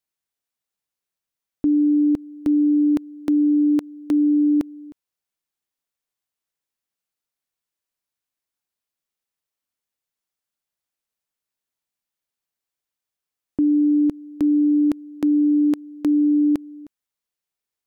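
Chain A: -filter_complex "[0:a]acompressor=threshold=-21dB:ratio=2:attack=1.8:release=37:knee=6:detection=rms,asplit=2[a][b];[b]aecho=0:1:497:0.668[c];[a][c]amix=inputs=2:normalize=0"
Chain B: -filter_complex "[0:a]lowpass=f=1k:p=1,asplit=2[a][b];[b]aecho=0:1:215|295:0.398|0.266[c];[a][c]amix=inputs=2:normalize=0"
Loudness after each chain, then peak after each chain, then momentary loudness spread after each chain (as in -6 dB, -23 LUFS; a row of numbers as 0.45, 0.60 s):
-23.5, -20.5 LUFS; -16.0, -14.0 dBFS; 5, 7 LU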